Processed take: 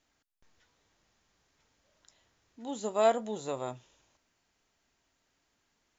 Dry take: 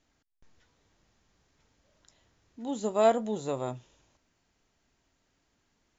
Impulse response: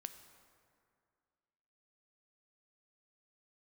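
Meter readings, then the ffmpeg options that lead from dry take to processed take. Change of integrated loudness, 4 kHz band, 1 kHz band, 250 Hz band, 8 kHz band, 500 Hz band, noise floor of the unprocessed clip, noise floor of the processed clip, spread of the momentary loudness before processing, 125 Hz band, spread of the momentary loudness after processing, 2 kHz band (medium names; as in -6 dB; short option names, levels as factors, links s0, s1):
-2.0 dB, 0.0 dB, -1.5 dB, -5.5 dB, no reading, -2.5 dB, -75 dBFS, -77 dBFS, 16 LU, -6.5 dB, 17 LU, -0.5 dB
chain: -af "lowshelf=f=410:g=-7.5"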